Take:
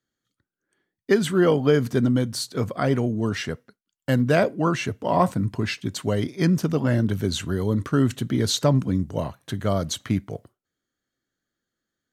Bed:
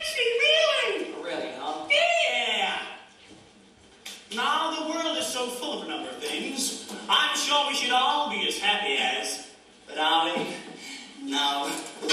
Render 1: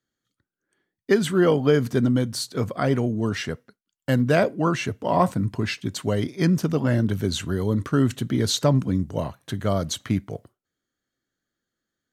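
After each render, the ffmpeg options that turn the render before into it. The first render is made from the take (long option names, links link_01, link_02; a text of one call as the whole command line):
ffmpeg -i in.wav -af anull out.wav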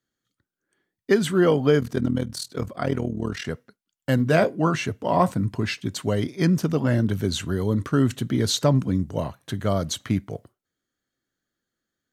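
ffmpeg -i in.wav -filter_complex "[0:a]asplit=3[link_01][link_02][link_03];[link_01]afade=type=out:start_time=1.79:duration=0.02[link_04];[link_02]tremolo=f=40:d=0.824,afade=type=in:start_time=1.79:duration=0.02,afade=type=out:start_time=3.45:duration=0.02[link_05];[link_03]afade=type=in:start_time=3.45:duration=0.02[link_06];[link_04][link_05][link_06]amix=inputs=3:normalize=0,asettb=1/sr,asplit=3[link_07][link_08][link_09];[link_07]atrim=end=4.164[link_10];[link_08]atrim=start=4.16:end=4.8,asetpts=PTS-STARTPTS,afade=type=in:duration=0.004:curve=qsin,afade=type=out:start_time=0.636:duration=0.004:curve=qsin,asplit=2[link_11][link_12];[link_12]adelay=19,volume=-10dB[link_13];[link_11][link_13]amix=inputs=2:normalize=0,atrim=end_sample=28224[link_14];[link_09]atrim=start=4.796[link_15];[link_10][link_14]acrossfade=duration=0.004:curve1=hsin:curve2=qsin[link_16];[link_16][link_15]acrossfade=duration=0.004:curve1=qsin:curve2=hsin" out.wav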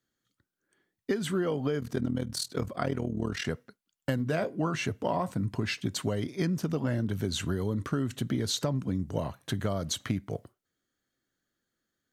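ffmpeg -i in.wav -af "alimiter=limit=-11dB:level=0:latency=1:release=476,acompressor=threshold=-26dB:ratio=6" out.wav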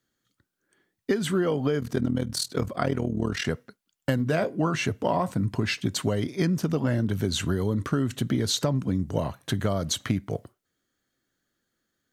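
ffmpeg -i in.wav -af "volume=4.5dB" out.wav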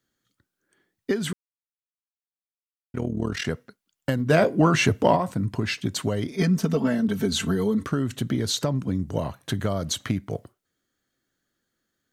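ffmpeg -i in.wav -filter_complex "[0:a]asplit=3[link_01][link_02][link_03];[link_01]afade=type=out:start_time=4.29:duration=0.02[link_04];[link_02]acontrast=77,afade=type=in:start_time=4.29:duration=0.02,afade=type=out:start_time=5.15:duration=0.02[link_05];[link_03]afade=type=in:start_time=5.15:duration=0.02[link_06];[link_04][link_05][link_06]amix=inputs=3:normalize=0,asettb=1/sr,asplit=3[link_07][link_08][link_09];[link_07]atrim=end=6.314[link_10];[link_08]atrim=start=6.31:end=7.85,asetpts=PTS-STARTPTS,afade=type=in:duration=0.004:curve=qsin,afade=type=out:start_time=1.536:duration=0.004:curve=qsin,aecho=1:1:4.5:0.95,atrim=end_sample=67914[link_11];[link_09]atrim=start=7.846[link_12];[link_10][link_11]acrossfade=duration=0.004:curve1=hsin:curve2=qsin[link_13];[link_13][link_12]acrossfade=duration=0.004:curve1=qsin:curve2=hsin,asplit=3[link_14][link_15][link_16];[link_14]atrim=end=1.33,asetpts=PTS-STARTPTS,afade=type=out:start_time=1.326:duration=0.004:curve=hsin[link_17];[link_15]atrim=start=1.33:end=2.94,asetpts=PTS-STARTPTS,volume=0[link_18];[link_16]atrim=start=2.94,asetpts=PTS-STARTPTS,afade=type=in:duration=0.004:curve=hsin[link_19];[link_17][link_18][link_19]concat=n=3:v=0:a=1" out.wav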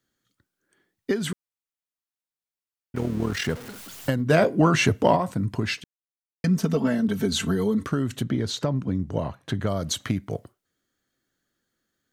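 ffmpeg -i in.wav -filter_complex "[0:a]asettb=1/sr,asplit=3[link_01][link_02][link_03];[link_01]atrim=end=2.964[link_04];[link_02]atrim=start=2.96:end=4.11,asetpts=PTS-STARTPTS,afade=type=in:duration=0.004:curve=qsin,afade=type=out:start_time=1.146:duration=0.004:curve=qsin,aeval=exprs='val(0)+0.5*0.0178*sgn(val(0))':channel_layout=same[link_05];[link_03]atrim=start=4.106[link_06];[link_04][link_05]acrossfade=duration=0.004:curve1=hsin:curve2=qsin[link_07];[link_07][link_06]acrossfade=duration=0.004:curve1=qsin:curve2=hsin,asettb=1/sr,asplit=3[link_08][link_09][link_10];[link_08]atrim=end=8.234[link_11];[link_09]atrim=start=8.23:end=9.67,asetpts=PTS-STARTPTS,afade=type=in:duration=0.004:curve=qsin,afade=type=out:start_time=1.436:duration=0.004:curve=qsin,aemphasis=mode=reproduction:type=50kf[link_12];[link_10]atrim=start=9.666[link_13];[link_11][link_12]acrossfade=duration=0.004:curve1=hsin:curve2=qsin[link_14];[link_14][link_13]acrossfade=duration=0.004:curve1=qsin:curve2=hsin,asplit=3[link_15][link_16][link_17];[link_15]atrim=end=5.84,asetpts=PTS-STARTPTS,afade=type=out:start_time=5.836:duration=0.004:curve=hsin[link_18];[link_16]atrim=start=5.84:end=6.44,asetpts=PTS-STARTPTS,volume=0[link_19];[link_17]atrim=start=6.44,asetpts=PTS-STARTPTS,afade=type=in:duration=0.004:curve=hsin[link_20];[link_18][link_19][link_20]concat=n=3:v=0:a=1" out.wav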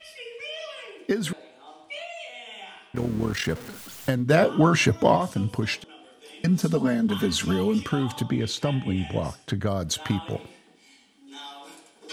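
ffmpeg -i in.wav -i bed.wav -filter_complex "[1:a]volume=-15.5dB[link_01];[0:a][link_01]amix=inputs=2:normalize=0" out.wav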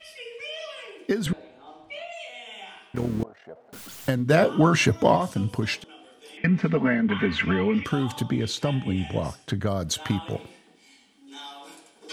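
ffmpeg -i in.wav -filter_complex "[0:a]asettb=1/sr,asplit=3[link_01][link_02][link_03];[link_01]atrim=end=1.264[link_04];[link_02]atrim=start=1.26:end=2.12,asetpts=PTS-STARTPTS,afade=type=in:duration=0.004:curve=qsin,afade=type=out:start_time=0.856:duration=0.004:curve=qsin,aemphasis=mode=reproduction:type=bsi[link_05];[link_03]atrim=start=2.116[link_06];[link_04][link_05]acrossfade=duration=0.004:curve1=hsin:curve2=qsin[link_07];[link_07][link_06]acrossfade=duration=0.004:curve1=qsin:curve2=hsin,asettb=1/sr,asplit=3[link_08][link_09][link_10];[link_08]atrim=end=3.234[link_11];[link_09]atrim=start=3.23:end=3.73,asetpts=PTS-STARTPTS,afade=type=in:duration=0.004:curve=qsin,afade=type=out:start_time=0.496:duration=0.004:curve=qsin,bandpass=frequency=660:width_type=q:width=6[link_12];[link_10]atrim=start=3.726[link_13];[link_11][link_12]acrossfade=duration=0.004:curve1=hsin:curve2=qsin[link_14];[link_14][link_13]acrossfade=duration=0.004:curve1=qsin:curve2=hsin,asettb=1/sr,asplit=3[link_15][link_16][link_17];[link_15]atrim=end=6.374[link_18];[link_16]atrim=start=6.37:end=7.85,asetpts=PTS-STARTPTS,afade=type=in:duration=0.004:curve=qsin,afade=type=out:start_time=1.476:duration=0.004:curve=qsin,lowpass=frequency=2100:width_type=q:width=5.3[link_19];[link_17]atrim=start=7.846[link_20];[link_18][link_19]acrossfade=duration=0.004:curve1=hsin:curve2=qsin[link_21];[link_21][link_20]acrossfade=duration=0.004:curve1=qsin:curve2=hsin" out.wav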